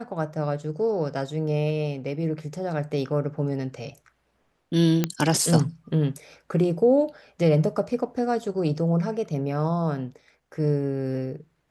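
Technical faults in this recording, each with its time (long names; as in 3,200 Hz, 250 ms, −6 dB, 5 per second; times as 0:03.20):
0:05.04: click −8 dBFS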